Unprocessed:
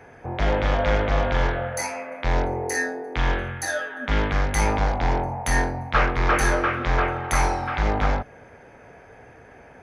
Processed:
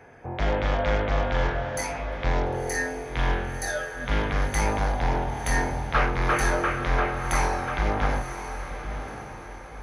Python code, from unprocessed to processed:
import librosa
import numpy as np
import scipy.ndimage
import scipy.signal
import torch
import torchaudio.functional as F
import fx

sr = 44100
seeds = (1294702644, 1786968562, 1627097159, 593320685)

y = fx.echo_diffused(x, sr, ms=1020, feedback_pct=41, wet_db=-9.5)
y = F.gain(torch.from_numpy(y), -3.0).numpy()